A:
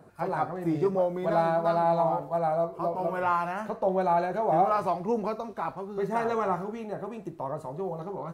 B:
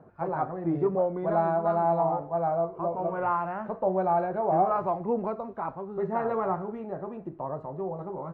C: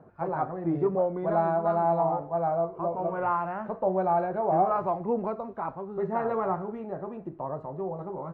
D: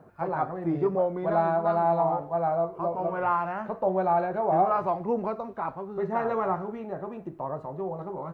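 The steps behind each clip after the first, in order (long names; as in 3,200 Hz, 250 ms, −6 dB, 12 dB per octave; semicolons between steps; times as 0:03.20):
low-pass filter 1,400 Hz 12 dB per octave
no processing that can be heard
high-shelf EQ 2,500 Hz +11.5 dB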